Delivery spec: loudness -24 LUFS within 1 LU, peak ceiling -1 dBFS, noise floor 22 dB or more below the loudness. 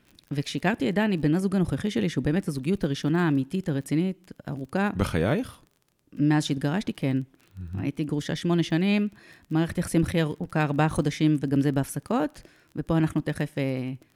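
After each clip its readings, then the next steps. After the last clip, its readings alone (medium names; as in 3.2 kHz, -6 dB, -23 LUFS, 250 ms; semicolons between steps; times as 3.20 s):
tick rate 27 per s; loudness -26.5 LUFS; peak level -8.5 dBFS; loudness target -24.0 LUFS
-> de-click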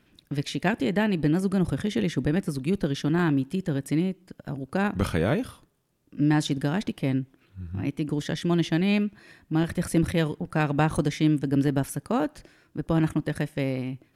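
tick rate 0.071 per s; loudness -26.5 LUFS; peak level -8.5 dBFS; loudness target -24.0 LUFS
-> trim +2.5 dB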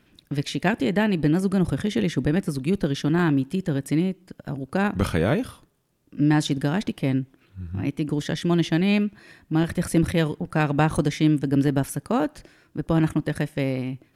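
loudness -24.0 LUFS; peak level -6.0 dBFS; noise floor -63 dBFS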